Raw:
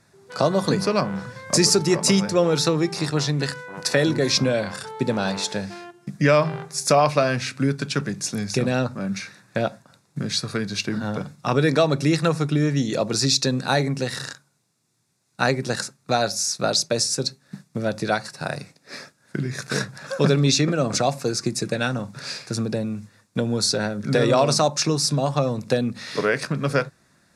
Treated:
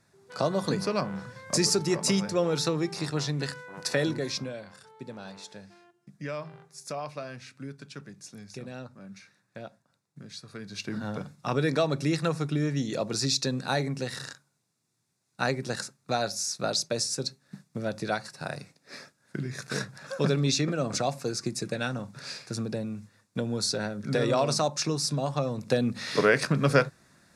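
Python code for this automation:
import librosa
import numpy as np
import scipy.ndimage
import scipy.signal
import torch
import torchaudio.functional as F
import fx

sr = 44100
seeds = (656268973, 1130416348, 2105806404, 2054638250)

y = fx.gain(x, sr, db=fx.line((4.05, -7.0), (4.64, -18.5), (10.44, -18.5), (10.96, -7.0), (25.5, -7.0), (26.05, 0.0)))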